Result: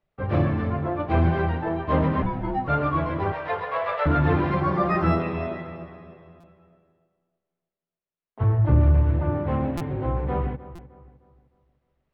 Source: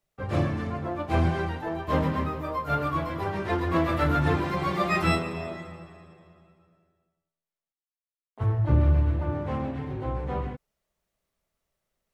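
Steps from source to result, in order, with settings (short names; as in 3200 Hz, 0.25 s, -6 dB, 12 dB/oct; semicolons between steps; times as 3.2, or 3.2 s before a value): air absorption 330 m; in parallel at +0.5 dB: limiter -19 dBFS, peak gain reduction 7 dB; 3.32–4.06 on the sum: Chebyshev high-pass 430 Hz, order 10; 4.6–5.2 band shelf 2900 Hz -8 dB 1.2 oct; on a send: darkening echo 0.306 s, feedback 38%, low-pass 2800 Hz, level -16 dB; 2.22–2.68 on the sum: frequency shift -270 Hz; stuck buffer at 6.4/9.77/10.75, samples 256, times 5; gain -1 dB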